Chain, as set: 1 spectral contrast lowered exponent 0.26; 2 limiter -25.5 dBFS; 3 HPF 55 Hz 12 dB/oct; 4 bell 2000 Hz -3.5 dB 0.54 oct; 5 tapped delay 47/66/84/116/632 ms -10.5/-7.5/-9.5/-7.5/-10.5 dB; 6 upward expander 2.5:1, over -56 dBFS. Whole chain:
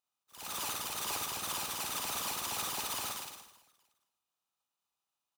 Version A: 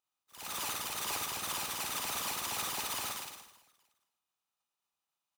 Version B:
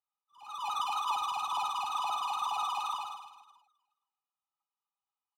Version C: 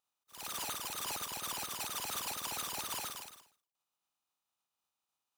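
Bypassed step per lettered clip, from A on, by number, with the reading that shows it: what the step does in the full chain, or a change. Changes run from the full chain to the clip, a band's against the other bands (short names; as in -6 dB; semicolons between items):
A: 4, 2 kHz band +2.0 dB; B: 1, 1 kHz band +15.5 dB; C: 5, momentary loudness spread change +1 LU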